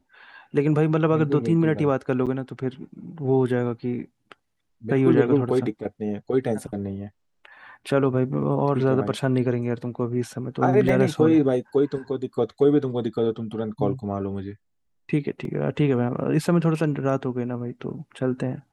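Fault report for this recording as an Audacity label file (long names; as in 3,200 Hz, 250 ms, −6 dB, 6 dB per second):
2.260000	2.270000	drop-out 7.4 ms
10.890000	10.890000	drop-out 2.8 ms
15.450000	15.450000	drop-out 2 ms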